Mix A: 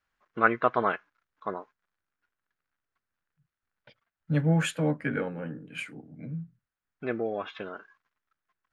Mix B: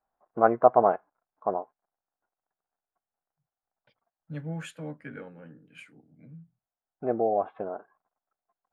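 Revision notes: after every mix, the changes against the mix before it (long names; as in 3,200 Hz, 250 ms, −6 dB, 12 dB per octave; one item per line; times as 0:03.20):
first voice: add low-pass with resonance 740 Hz, resonance Q 4.1
second voice −11.5 dB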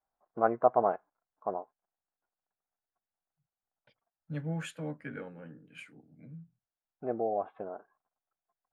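first voice −6.0 dB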